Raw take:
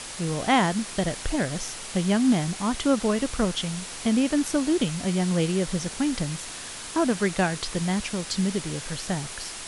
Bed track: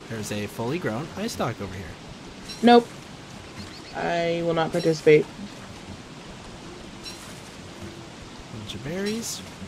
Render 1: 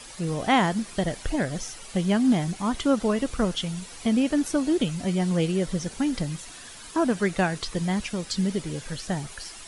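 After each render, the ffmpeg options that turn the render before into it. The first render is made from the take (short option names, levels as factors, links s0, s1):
-af "afftdn=nr=10:nf=-38"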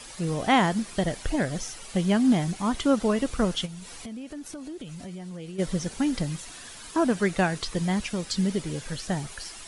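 -filter_complex "[0:a]asplit=3[s0][s1][s2];[s0]afade=t=out:st=3.65:d=0.02[s3];[s1]acompressor=threshold=0.0141:ratio=5:attack=3.2:release=140:knee=1:detection=peak,afade=t=in:st=3.65:d=0.02,afade=t=out:st=5.58:d=0.02[s4];[s2]afade=t=in:st=5.58:d=0.02[s5];[s3][s4][s5]amix=inputs=3:normalize=0"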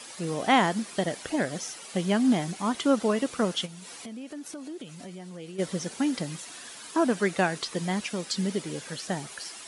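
-af "highpass=210"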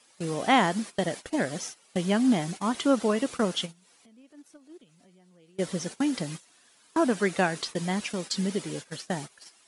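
-af "agate=range=0.141:threshold=0.0158:ratio=16:detection=peak"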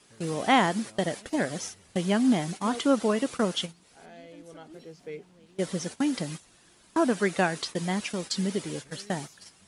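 -filter_complex "[1:a]volume=0.0631[s0];[0:a][s0]amix=inputs=2:normalize=0"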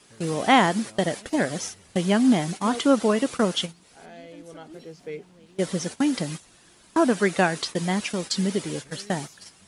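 -af "volume=1.58"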